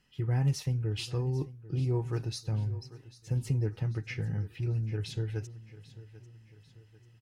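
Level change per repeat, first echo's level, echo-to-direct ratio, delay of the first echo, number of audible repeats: −6.5 dB, −17.5 dB, −16.5 dB, 793 ms, 3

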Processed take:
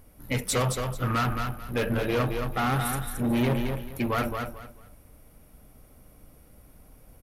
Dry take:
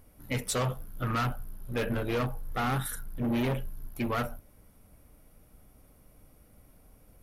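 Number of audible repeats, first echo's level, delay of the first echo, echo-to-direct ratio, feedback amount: 3, −5.5 dB, 220 ms, −5.0 dB, 24%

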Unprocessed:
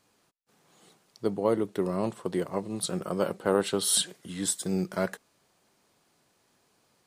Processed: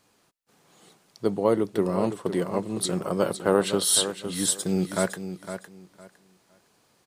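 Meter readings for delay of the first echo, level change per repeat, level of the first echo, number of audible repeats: 509 ms, −13.5 dB, −10.0 dB, 2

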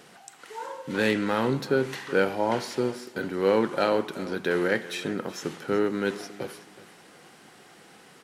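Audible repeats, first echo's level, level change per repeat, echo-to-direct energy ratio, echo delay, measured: 2, −17.5 dB, −10.0 dB, −17.0 dB, 373 ms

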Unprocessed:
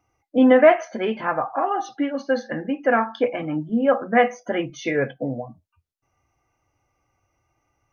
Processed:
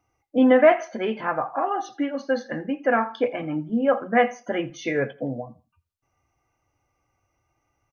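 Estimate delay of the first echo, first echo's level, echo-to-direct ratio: 83 ms, −20.5 dB, −20.0 dB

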